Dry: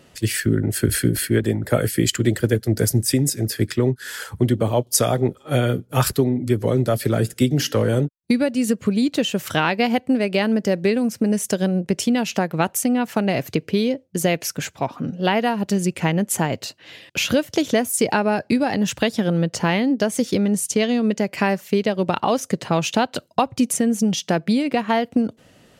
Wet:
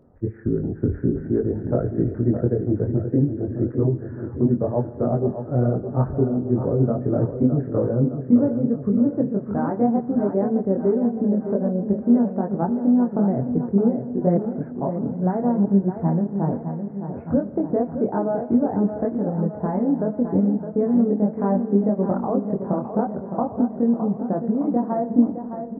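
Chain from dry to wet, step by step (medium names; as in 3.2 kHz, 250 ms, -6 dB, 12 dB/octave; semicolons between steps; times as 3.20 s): Gaussian low-pass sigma 9.2 samples; chorus voices 6, 0.58 Hz, delay 23 ms, depth 2.5 ms; on a send: feedback delay 613 ms, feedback 58%, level -9 dB; on the sum: spring tank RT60 2 s, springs 38 ms, chirp 65 ms, DRR 15 dB; trim +2 dB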